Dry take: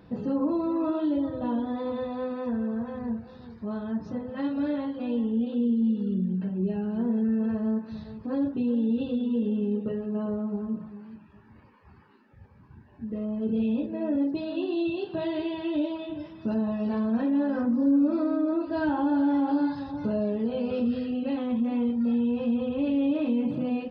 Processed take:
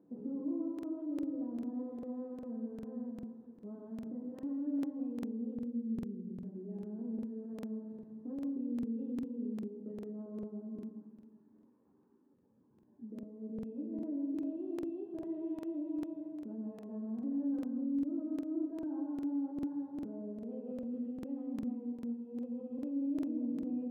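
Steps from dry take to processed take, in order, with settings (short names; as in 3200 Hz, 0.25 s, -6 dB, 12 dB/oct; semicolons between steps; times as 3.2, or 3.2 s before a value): 13.08–13.53 compressor, threshold -32 dBFS, peak gain reduction 8.5 dB; limiter -25.5 dBFS, peak gain reduction 10 dB; ladder band-pass 330 Hz, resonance 45%; reverb RT60 0.75 s, pre-delay 0.119 s, DRR 4.5 dB; crackling interface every 0.40 s, samples 2048, repeat, from 0.74; gain -1 dB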